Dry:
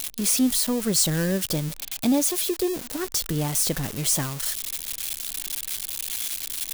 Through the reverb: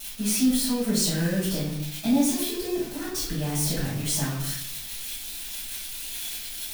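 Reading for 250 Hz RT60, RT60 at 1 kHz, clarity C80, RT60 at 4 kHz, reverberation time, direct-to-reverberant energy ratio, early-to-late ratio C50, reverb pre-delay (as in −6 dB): 0.85 s, 0.65 s, 5.5 dB, 0.55 s, 0.70 s, −12.0 dB, 2.5 dB, 5 ms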